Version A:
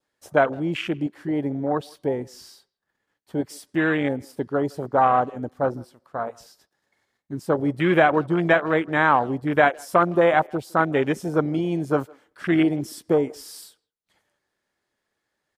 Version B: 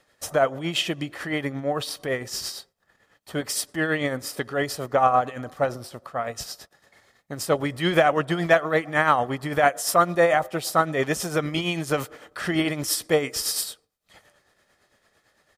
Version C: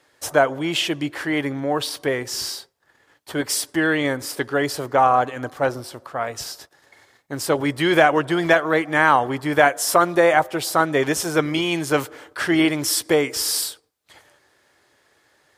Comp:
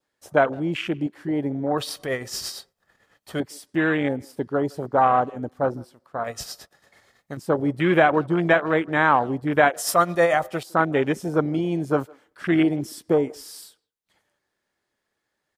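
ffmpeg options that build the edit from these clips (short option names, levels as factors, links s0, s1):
-filter_complex "[1:a]asplit=3[s0][s1][s2];[0:a]asplit=4[s3][s4][s5][s6];[s3]atrim=end=1.782[s7];[s0]atrim=start=1.778:end=3.402[s8];[s4]atrim=start=3.398:end=6.242[s9];[s1]atrim=start=6.238:end=7.372[s10];[s5]atrim=start=7.368:end=9.762[s11];[s2]atrim=start=9.758:end=10.632[s12];[s6]atrim=start=10.628[s13];[s7][s8]acrossfade=d=0.004:c1=hsin:c2=hsin[s14];[s14][s9]acrossfade=d=0.004:c1=hsin:c2=hsin[s15];[s15][s10]acrossfade=d=0.004:c1=hsin:c2=hsin[s16];[s16][s11]acrossfade=d=0.004:c1=hsin:c2=hsin[s17];[s17][s12]acrossfade=d=0.004:c1=hsin:c2=hsin[s18];[s18][s13]acrossfade=d=0.004:c1=hsin:c2=hsin"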